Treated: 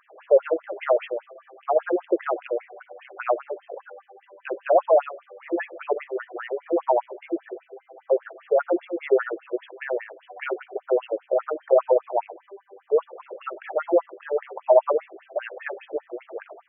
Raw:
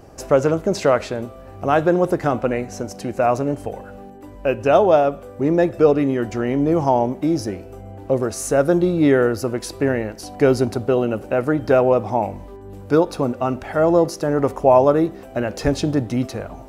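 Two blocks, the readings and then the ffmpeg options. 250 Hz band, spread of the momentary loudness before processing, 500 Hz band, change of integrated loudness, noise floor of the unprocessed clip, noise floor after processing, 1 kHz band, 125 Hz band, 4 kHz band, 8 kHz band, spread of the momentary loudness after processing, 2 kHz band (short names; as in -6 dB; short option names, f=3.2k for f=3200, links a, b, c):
-14.0 dB, 13 LU, -5.0 dB, -6.0 dB, -39 dBFS, -61 dBFS, -6.5 dB, under -40 dB, under -10 dB, under -40 dB, 18 LU, -6.0 dB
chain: -af "bandreject=f=60:t=h:w=6,bandreject=f=120:t=h:w=6,bandreject=f=180:t=h:w=6,bandreject=f=240:t=h:w=6,bandreject=f=300:t=h:w=6,afftfilt=real='re*between(b*sr/1024,440*pow(2500/440,0.5+0.5*sin(2*PI*5*pts/sr))/1.41,440*pow(2500/440,0.5+0.5*sin(2*PI*5*pts/sr))*1.41)':imag='im*between(b*sr/1024,440*pow(2500/440,0.5+0.5*sin(2*PI*5*pts/sr))/1.41,440*pow(2500/440,0.5+0.5*sin(2*PI*5*pts/sr))*1.41)':win_size=1024:overlap=0.75"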